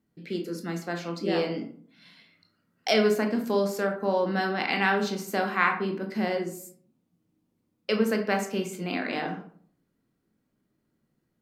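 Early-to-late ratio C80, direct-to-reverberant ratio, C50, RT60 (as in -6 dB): 13.5 dB, 3.5 dB, 8.5 dB, 0.55 s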